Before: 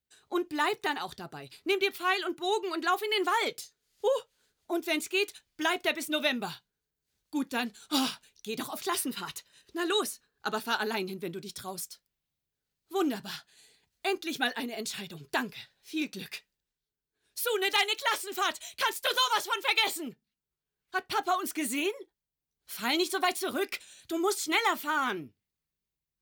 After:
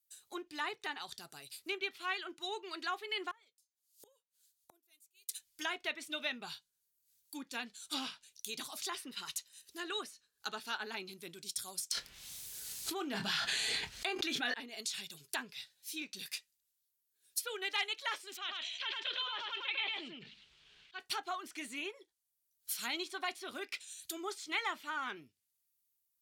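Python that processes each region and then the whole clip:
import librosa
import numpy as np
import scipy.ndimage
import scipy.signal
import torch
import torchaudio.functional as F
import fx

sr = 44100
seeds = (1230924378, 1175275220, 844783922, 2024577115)

y = fx.chain(x, sr, fx.gate_flip(shuts_db=-34.0, range_db=-34),
    fx.band_widen(depth_pct=100), at=(3.31, 5.29))
y = fx.chain(y, sr, fx.doubler(ms=24.0, db=-10.5),
    fx.env_flatten(amount_pct=100), at=(11.91, 14.54))
y = fx.chain(y, sr, fx.ladder_lowpass(hz=3700.0, resonance_pct=45),
    fx.echo_single(ms=105, db=-5.0),
    fx.sustainer(db_per_s=30.0), at=(18.37, 21.0))
y = fx.high_shelf(y, sr, hz=9300.0, db=8.0)
y = fx.env_lowpass_down(y, sr, base_hz=2400.0, full_db=-26.5)
y = F.preemphasis(torch.from_numpy(y), 0.9).numpy()
y = y * librosa.db_to_amplitude(4.5)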